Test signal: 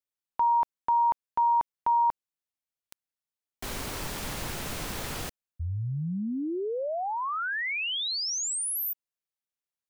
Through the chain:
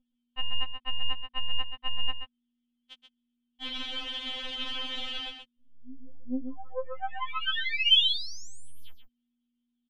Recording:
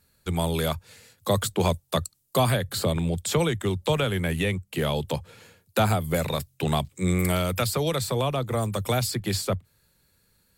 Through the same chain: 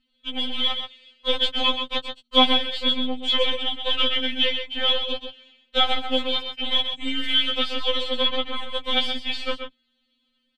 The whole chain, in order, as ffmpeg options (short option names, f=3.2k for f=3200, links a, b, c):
-filter_complex "[0:a]equalizer=f=78:w=2.1:g=-11,aeval=exprs='0.282*(cos(1*acos(clip(val(0)/0.282,-1,1)))-cos(1*PI/2))+0.0631*(cos(2*acos(clip(val(0)/0.282,-1,1)))-cos(2*PI/2))+0.0447*(cos(4*acos(clip(val(0)/0.282,-1,1)))-cos(4*PI/2))+0.0447*(cos(6*acos(clip(val(0)/0.282,-1,1)))-cos(6*PI/2))+0.02*(cos(7*acos(clip(val(0)/0.282,-1,1)))-cos(7*PI/2))':c=same,aeval=exprs='val(0)+0.000794*(sin(2*PI*60*n/s)+sin(2*PI*2*60*n/s)/2+sin(2*PI*3*60*n/s)/3+sin(2*PI*4*60*n/s)/4+sin(2*PI*5*60*n/s)/5)':c=same,lowpass=f=3.2k:t=q:w=13,asplit=2[a][b];[b]aecho=0:1:130:0.422[c];[a][c]amix=inputs=2:normalize=0,afftfilt=real='re*3.46*eq(mod(b,12),0)':imag='im*3.46*eq(mod(b,12),0)':win_size=2048:overlap=0.75"